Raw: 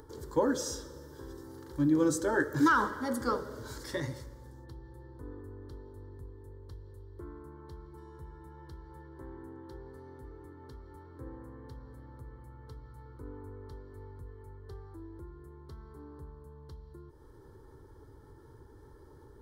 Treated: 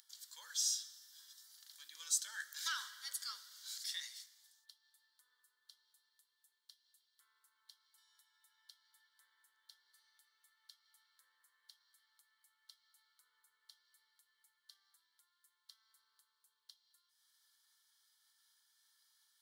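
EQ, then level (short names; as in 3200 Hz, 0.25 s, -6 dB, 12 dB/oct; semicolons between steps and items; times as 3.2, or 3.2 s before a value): ladder high-pass 2600 Hz, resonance 30%; +9.0 dB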